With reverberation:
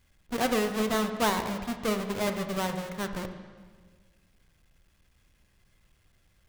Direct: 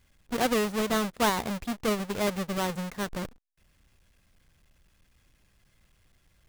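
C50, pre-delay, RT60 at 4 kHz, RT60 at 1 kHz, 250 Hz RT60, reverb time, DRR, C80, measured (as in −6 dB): 8.5 dB, 14 ms, 1.4 s, 1.5 s, 1.9 s, 1.6 s, 6.5 dB, 10.0 dB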